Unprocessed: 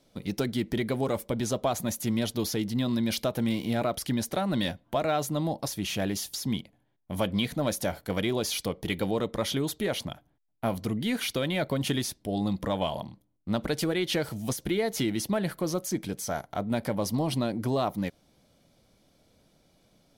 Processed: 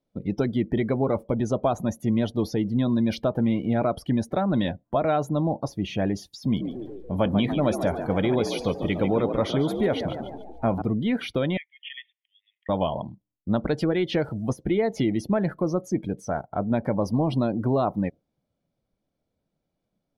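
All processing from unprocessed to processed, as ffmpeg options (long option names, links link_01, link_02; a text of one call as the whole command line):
ffmpeg -i in.wav -filter_complex "[0:a]asettb=1/sr,asplit=3[link_01][link_02][link_03];[link_01]atrim=end=6.424[link_04];[link_02]atrim=start=6.42:end=10.82,asetpts=PTS-STARTPTS,afade=type=in:duration=0.004:curve=qsin,afade=type=out:start_time=4.396:duration=0.004:curve=qsin,aeval=exprs='val(0)+0.5*0.00841*sgn(val(0))':channel_layout=same,asplit=8[link_05][link_06][link_07][link_08][link_09][link_10][link_11][link_12];[link_06]adelay=144,afreqshift=58,volume=-8dB[link_13];[link_07]adelay=288,afreqshift=116,volume=-12.7dB[link_14];[link_08]adelay=432,afreqshift=174,volume=-17.5dB[link_15];[link_09]adelay=576,afreqshift=232,volume=-22.2dB[link_16];[link_10]adelay=720,afreqshift=290,volume=-26.9dB[link_17];[link_11]adelay=864,afreqshift=348,volume=-31.7dB[link_18];[link_12]adelay=1008,afreqshift=406,volume=-36.4dB[link_19];[link_05][link_13][link_14][link_15][link_16][link_17][link_18][link_19]amix=inputs=8:normalize=0,atrim=end_sample=194040[link_20];[link_03]atrim=start=10.816[link_21];[link_04][link_20]acrossfade=duration=0.004:curve1=hsin:curve2=qsin[link_22];[link_22][link_21]acrossfade=duration=0.004:curve1=qsin:curve2=hsin,asettb=1/sr,asplit=3[link_23][link_24][link_25];[link_23]atrim=end=11.574[link_26];[link_24]atrim=start=11.57:end=12.69,asetpts=PTS-STARTPTS,afade=type=in:duration=0.004:curve=qsin,afade=type=out:start_time=1.116:duration=0.004:curve=qsin,asuperpass=centerf=2500:order=20:qfactor=1.5,acompressor=mode=upward:threshold=-48dB:ratio=2.5:attack=3.2:release=140:knee=2.83:detection=peak[link_27];[link_25]atrim=start=12.686[link_28];[link_26][link_27]acrossfade=duration=0.004:curve1=hsin:curve2=qsin[link_29];[link_29][link_28]acrossfade=duration=0.004:curve1=qsin:curve2=hsin,highshelf=frequency=2500:gain=-12,afftdn=noise_reduction=20:noise_floor=-45,volume=5dB" out.wav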